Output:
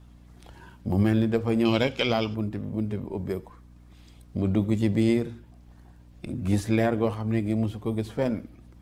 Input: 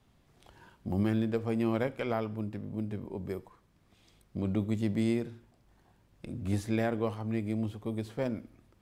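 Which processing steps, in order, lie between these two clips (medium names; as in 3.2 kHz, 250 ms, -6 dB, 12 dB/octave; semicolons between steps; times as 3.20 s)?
coarse spectral quantiser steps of 15 dB; 1.65–2.35 s: high-order bell 4.1 kHz +14 dB; hum 60 Hz, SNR 24 dB; trim +7 dB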